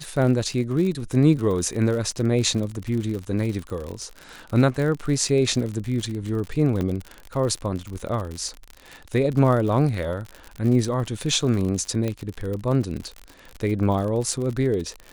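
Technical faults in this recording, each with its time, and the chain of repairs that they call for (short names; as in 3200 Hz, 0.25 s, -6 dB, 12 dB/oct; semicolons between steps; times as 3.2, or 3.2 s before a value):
crackle 59/s -28 dBFS
6.81 pop -15 dBFS
12.08 pop -14 dBFS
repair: de-click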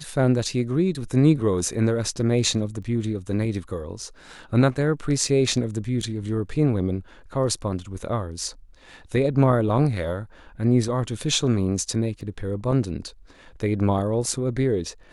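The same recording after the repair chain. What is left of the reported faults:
none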